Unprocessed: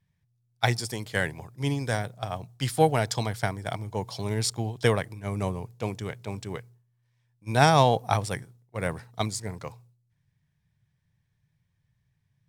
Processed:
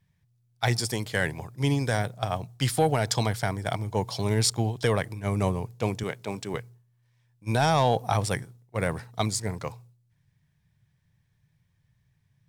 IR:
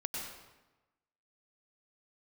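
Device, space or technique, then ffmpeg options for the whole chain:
soft clipper into limiter: -filter_complex "[0:a]asoftclip=type=tanh:threshold=-8.5dB,alimiter=limit=-16.5dB:level=0:latency=1:release=71,asettb=1/sr,asplit=3[a][b][c];[a]atrim=end=6.034[d];[b]atrim=start=6.03:end=6.54,asetpts=PTS-STARTPTS,afade=t=in:d=0.004:c=qsin,afade=t=out:st=0.506:d=0.004:c=qsin,highpass=170[e];[c]atrim=start=6.536[f];[d][e]acrossfade=d=0.004:c1=hsin:c2=qsin[g];[g][f]acrossfade=d=0.004:c1=qsin:c2=hsin,volume=4dB"

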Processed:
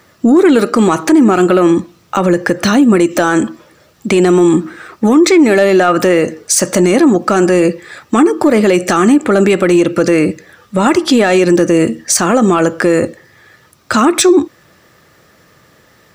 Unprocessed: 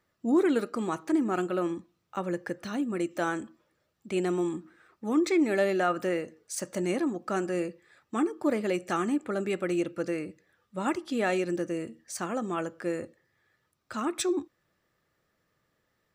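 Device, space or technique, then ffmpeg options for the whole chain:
mastering chain: -af "highpass=59,equalizer=f=5.9k:t=o:w=0.77:g=2.5,acompressor=threshold=-30dB:ratio=2.5,asoftclip=type=tanh:threshold=-21dB,alimiter=level_in=28.5dB:limit=-1dB:release=50:level=0:latency=1,volume=-1dB"

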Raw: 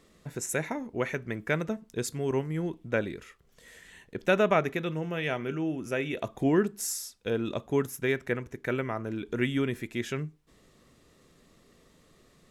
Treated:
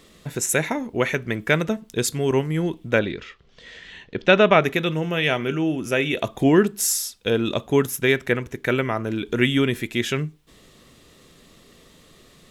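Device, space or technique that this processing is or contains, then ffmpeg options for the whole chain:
presence and air boost: -filter_complex "[0:a]asettb=1/sr,asplit=3[a][b][c];[a]atrim=end=2.994[d];[b]atrim=start=2.99:end=4.62,asetpts=PTS-STARTPTS,afade=t=in:d=0.004:c=qsin,afade=t=out:st=1.626:d=0.004:c=qsin,lowpass=f=5.2k:w=0.5412,lowpass=f=5.2k:w=1.3066[e];[c]atrim=start=4.616[f];[d][e]acrossfade=d=0.004:c1=hsin:c2=qsin[g];[g][f]acrossfade=d=0.004:c1=qsin:c2=hsin,equalizer=f=3.3k:t=o:w=0.9:g=6,highshelf=f=9.7k:g=6,volume=8dB"

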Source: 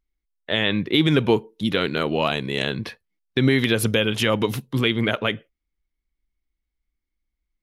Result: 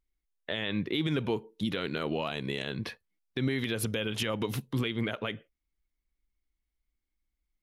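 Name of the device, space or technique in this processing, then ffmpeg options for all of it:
stacked limiters: -af "alimiter=limit=-11dB:level=0:latency=1:release=420,alimiter=limit=-17dB:level=0:latency=1:release=139,volume=-3dB"

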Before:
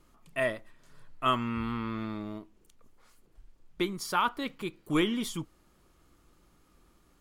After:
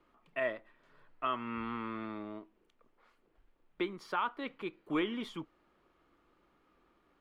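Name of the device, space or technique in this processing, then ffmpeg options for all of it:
DJ mixer with the lows and highs turned down: -filter_complex "[0:a]acrossover=split=250 3400:gain=0.224 1 0.0708[a][b][c];[a][b][c]amix=inputs=3:normalize=0,alimiter=limit=-20.5dB:level=0:latency=1:release=255,volume=-1.5dB"

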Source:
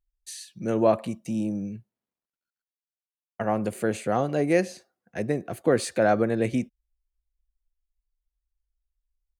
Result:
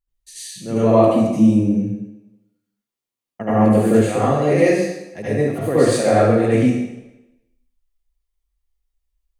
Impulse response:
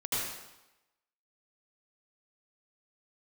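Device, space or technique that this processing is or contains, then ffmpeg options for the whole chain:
bathroom: -filter_complex "[0:a]bandreject=f=1.5k:w=9.4[a];[1:a]atrim=start_sample=2205[b];[a][b]afir=irnorm=-1:irlink=0,asettb=1/sr,asplit=3[c][d][e];[c]atrim=end=1.074[f];[d]atrim=start=1.07:end=4.02,asetpts=PTS-STARTPTS,afade=t=in:d=0.004:c=qsin,afade=t=out:st=2.946:d=0.004:c=qsin,equalizer=f=260:w=1:g=8.5[g];[e]atrim=start=4.016[h];[f][g]acrossfade=d=0.004:c1=hsin:c2=qsin[i];[i][h]acrossfade=d=0.004:c1=qsin:c2=hsin,volume=1dB"

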